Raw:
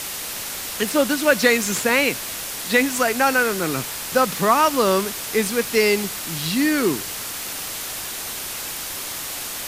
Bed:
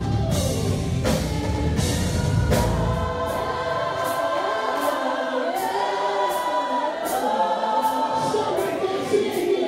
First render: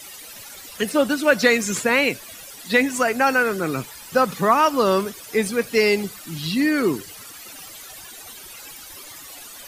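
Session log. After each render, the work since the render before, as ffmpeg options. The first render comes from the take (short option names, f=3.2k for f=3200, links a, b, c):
-af "afftdn=nr=15:nf=-30"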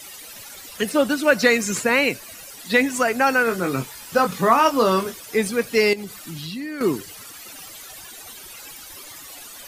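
-filter_complex "[0:a]asettb=1/sr,asplit=3[a][b][c];[a]atrim=end=1.234[d];[b]atrim=start=1.23:end=2.55,asetpts=PTS-STARTPTS,afade=t=in:d=0.004:c=qsin,afade=t=out:st=1.316:d=0.004:c=qsin,bandreject=f=3.4k:w=12[e];[c]atrim=start=2.546[f];[d][e]acrossfade=d=0.004:c1=hsin:c2=qsin[g];[g][f]acrossfade=d=0.004:c1=qsin:c2=hsin,asettb=1/sr,asplit=3[h][i][j];[h]atrim=end=3.454[k];[i]atrim=start=3.45:end=5.18,asetpts=PTS-STARTPTS,afade=t=in:d=0.004:c=qsin,afade=t=out:st=1.726:d=0.004:c=qsin,asplit=2[l][m];[m]adelay=22,volume=-6.5dB[n];[l][n]amix=inputs=2:normalize=0,atrim=end_sample=76293[o];[j]atrim=start=5.176[p];[k][o]acrossfade=d=0.004:c1=hsin:c2=qsin[q];[q][p]acrossfade=d=0.004:c1=qsin:c2=hsin,asettb=1/sr,asplit=3[r][s][t];[r]atrim=end=5.934[u];[s]atrim=start=5.93:end=6.81,asetpts=PTS-STARTPTS,afade=t=in:d=0.004:c=qsin,afade=t=out:st=0.876:d=0.004:c=qsin,acompressor=threshold=-29dB:ratio=5:attack=3.2:release=140:knee=1:detection=peak[v];[t]atrim=start=6.806[w];[u][v]acrossfade=d=0.004:c1=hsin:c2=qsin[x];[x][w]acrossfade=d=0.004:c1=qsin:c2=hsin"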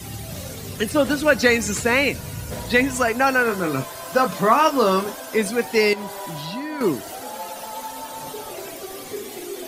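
-filter_complex "[1:a]volume=-12dB[a];[0:a][a]amix=inputs=2:normalize=0"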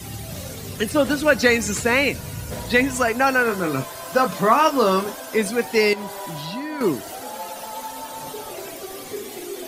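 -af anull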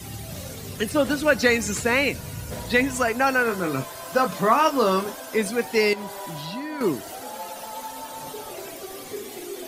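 -af "volume=-2.5dB"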